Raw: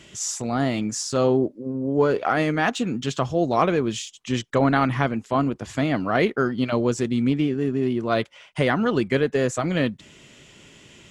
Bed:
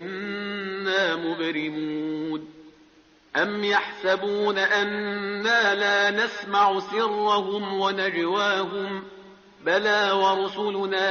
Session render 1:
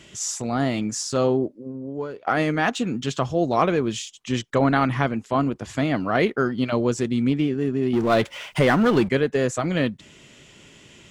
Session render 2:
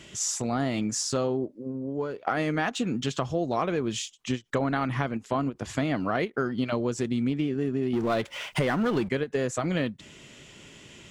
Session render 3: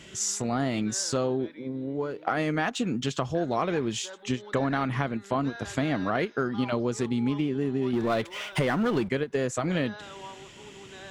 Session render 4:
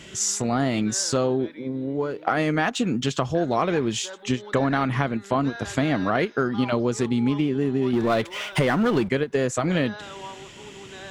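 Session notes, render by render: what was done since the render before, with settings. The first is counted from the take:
1.15–2.27 fade out, to -21 dB; 7.93–9.09 power-law curve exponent 0.7
compressor 4:1, threshold -24 dBFS, peak gain reduction 9 dB; ending taper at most 410 dB/s
add bed -22.5 dB
gain +4.5 dB

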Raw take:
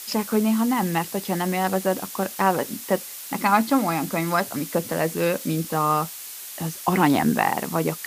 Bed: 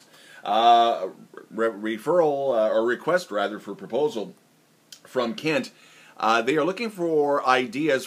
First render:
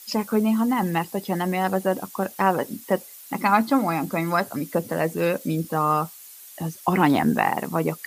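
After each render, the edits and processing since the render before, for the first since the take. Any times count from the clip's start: denoiser 11 dB, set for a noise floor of -37 dBFS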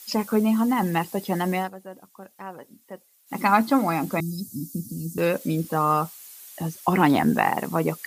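1.57–3.39 dip -17.5 dB, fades 0.13 s; 4.2–5.18 inverse Chebyshev band-stop 740–1800 Hz, stop band 70 dB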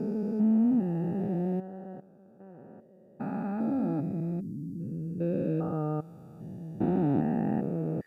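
stepped spectrum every 0.4 s; running mean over 42 samples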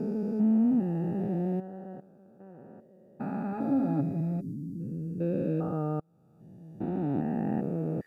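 3.52–4.54 comb 7.2 ms; 6–7.72 fade in, from -23 dB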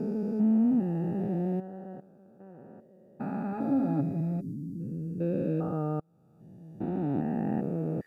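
nothing audible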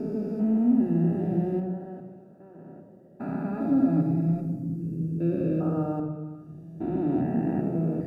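delay with a stepping band-pass 0.118 s, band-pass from 370 Hz, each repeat 0.7 oct, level -11 dB; shoebox room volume 3400 m³, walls furnished, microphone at 3 m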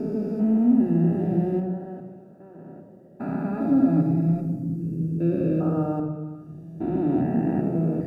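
gain +3 dB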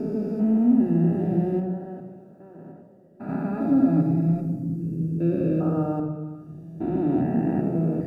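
2.71–3.28 detuned doubles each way 38 cents -> 26 cents

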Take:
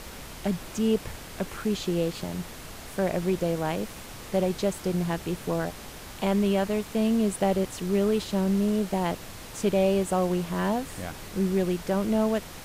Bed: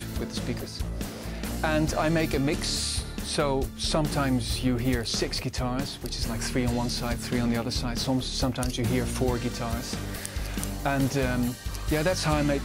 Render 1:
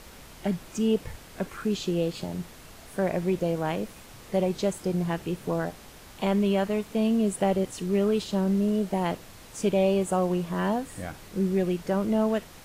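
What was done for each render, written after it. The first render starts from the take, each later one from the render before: noise print and reduce 6 dB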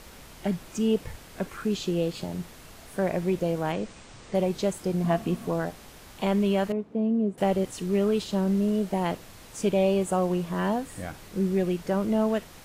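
3.72–4.35 steep low-pass 9000 Hz 96 dB/oct; 5.04–5.47 small resonant body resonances 230/690/1100 Hz, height 16 dB, ringing for 90 ms; 6.72–7.38 band-pass 290 Hz, Q 0.88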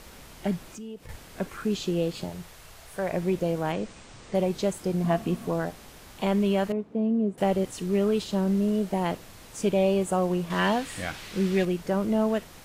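0.67–1.09 compressor 3:1, threshold -42 dBFS; 2.29–3.13 bell 250 Hz -11 dB 1.1 oct; 10.5–11.65 bell 3000 Hz +11.5 dB 2.5 oct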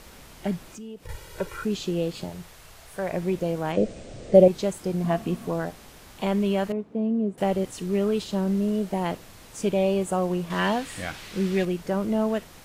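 1.05–1.65 comb 2.1 ms, depth 98%; 3.77–4.48 resonant low shelf 760 Hz +7.5 dB, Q 3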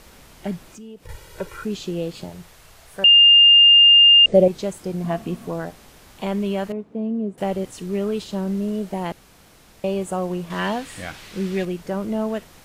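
3.04–4.26 bleep 2810 Hz -7.5 dBFS; 9.12–9.84 room tone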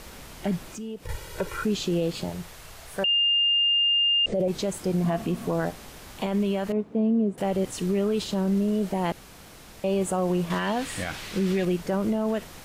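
negative-ratio compressor -18 dBFS, ratio -1; limiter -17.5 dBFS, peak gain reduction 9 dB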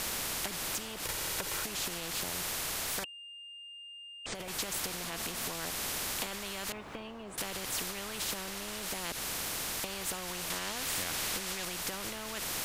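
compressor, threshold -31 dBFS, peak gain reduction 10.5 dB; spectral compressor 4:1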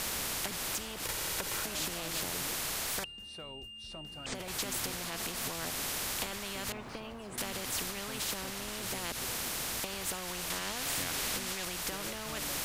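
add bed -23 dB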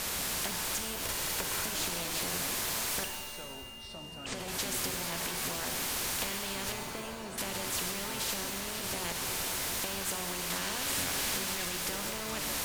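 shimmer reverb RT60 1.3 s, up +7 st, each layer -2 dB, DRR 5 dB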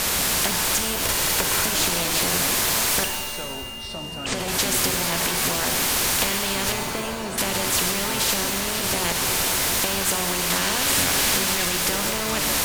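gain +12 dB

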